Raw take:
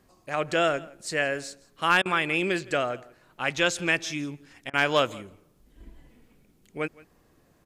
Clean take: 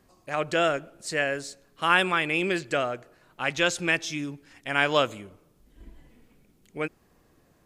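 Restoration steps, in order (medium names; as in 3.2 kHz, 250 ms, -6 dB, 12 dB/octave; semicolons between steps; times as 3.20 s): clip repair -10 dBFS; interpolate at 2.02/4.70 s, 34 ms; inverse comb 167 ms -22.5 dB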